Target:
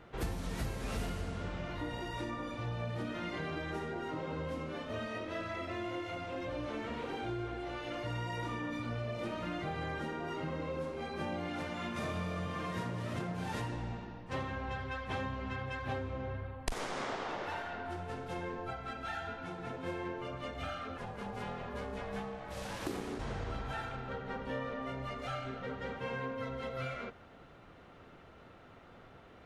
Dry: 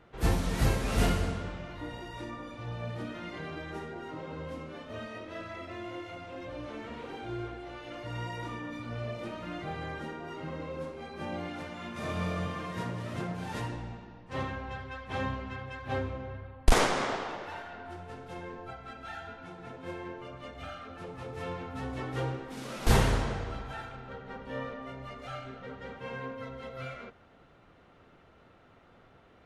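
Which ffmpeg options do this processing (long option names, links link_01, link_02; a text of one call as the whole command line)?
ffmpeg -i in.wav -filter_complex "[0:a]acompressor=threshold=-37dB:ratio=8,asplit=3[link_01][link_02][link_03];[link_01]afade=type=out:start_time=20.97:duration=0.02[link_04];[link_02]aeval=exprs='val(0)*sin(2*PI*330*n/s)':channel_layout=same,afade=type=in:start_time=20.97:duration=0.02,afade=type=out:start_time=23.18:duration=0.02[link_05];[link_03]afade=type=in:start_time=23.18:duration=0.02[link_06];[link_04][link_05][link_06]amix=inputs=3:normalize=0,volume=3dB" out.wav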